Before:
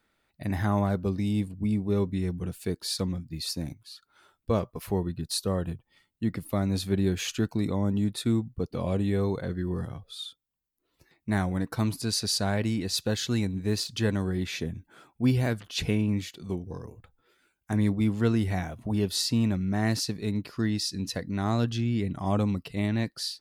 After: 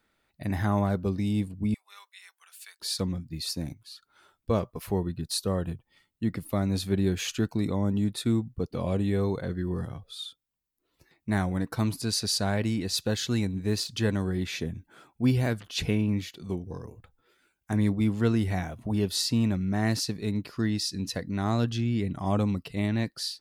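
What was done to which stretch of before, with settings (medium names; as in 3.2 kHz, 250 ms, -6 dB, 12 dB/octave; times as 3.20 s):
1.74–2.80 s: Bessel high-pass 1.7 kHz, order 6
15.86–16.36 s: peaking EQ 8 kHz -5.5 dB 0.48 oct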